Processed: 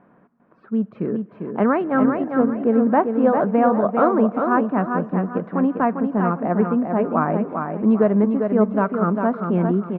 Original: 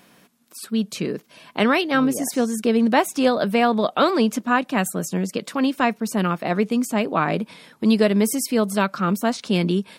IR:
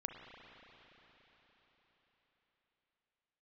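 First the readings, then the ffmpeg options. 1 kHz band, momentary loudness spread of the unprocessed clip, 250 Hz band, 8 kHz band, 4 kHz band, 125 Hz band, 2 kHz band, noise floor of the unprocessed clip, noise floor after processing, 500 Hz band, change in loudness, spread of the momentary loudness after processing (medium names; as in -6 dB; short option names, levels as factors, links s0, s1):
+1.5 dB, 8 LU, +2.0 dB, under -40 dB, under -25 dB, +2.0 dB, -5.5 dB, -55 dBFS, -55 dBFS, +2.5 dB, +1.5 dB, 7 LU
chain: -filter_complex "[0:a]lowpass=f=1400:w=0.5412,lowpass=f=1400:w=1.3066,aecho=1:1:399|798|1197|1596:0.531|0.17|0.0544|0.0174,asplit=2[s0][s1];[1:a]atrim=start_sample=2205,asetrate=41454,aresample=44100[s2];[s1][s2]afir=irnorm=-1:irlink=0,volume=0.168[s3];[s0][s3]amix=inputs=2:normalize=0"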